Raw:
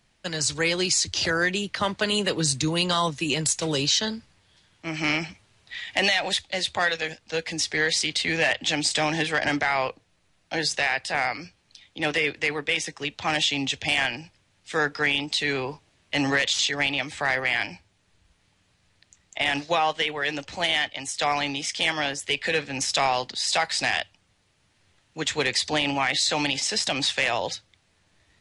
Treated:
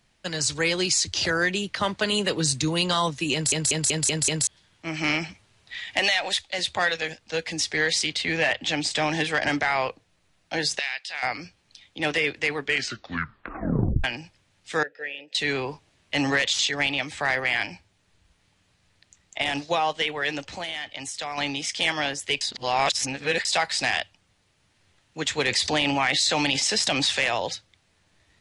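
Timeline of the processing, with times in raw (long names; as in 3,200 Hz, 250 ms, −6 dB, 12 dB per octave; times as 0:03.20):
0:03.33: stutter in place 0.19 s, 6 plays
0:05.99–0:06.59: parametric band 150 Hz −9.5 dB 2.2 octaves
0:08.11–0:09.11: high-shelf EQ 6,700 Hz −8.5 dB
0:10.79–0:11.23: resonant band-pass 3,600 Hz, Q 1.2
0:12.57: tape stop 1.47 s
0:14.83–0:15.35: formant filter e
0:19.42–0:20.01: parametric band 1,800 Hz −4.5 dB 1.3 octaves
0:20.51–0:21.38: downward compressor 3 to 1, threshold −30 dBFS
0:22.41–0:23.45: reverse
0:25.48–0:27.18: envelope flattener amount 50%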